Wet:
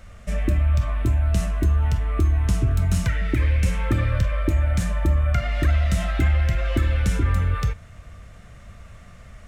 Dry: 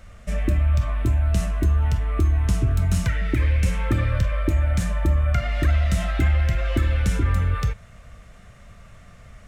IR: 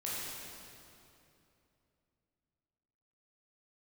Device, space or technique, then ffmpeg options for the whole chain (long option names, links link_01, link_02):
ducked reverb: -filter_complex "[0:a]asplit=3[link_01][link_02][link_03];[1:a]atrim=start_sample=2205[link_04];[link_02][link_04]afir=irnorm=-1:irlink=0[link_05];[link_03]apad=whole_len=417870[link_06];[link_05][link_06]sidechaincompress=threshold=-38dB:ratio=8:attack=16:release=766,volume=-13.5dB[link_07];[link_01][link_07]amix=inputs=2:normalize=0"